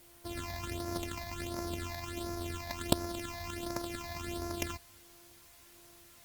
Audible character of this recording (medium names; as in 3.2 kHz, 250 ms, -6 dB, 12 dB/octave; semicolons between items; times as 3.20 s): a buzz of ramps at a fixed pitch in blocks of 128 samples; phasing stages 8, 1.4 Hz, lowest notch 380–3100 Hz; a quantiser's noise floor 10-bit, dither triangular; Opus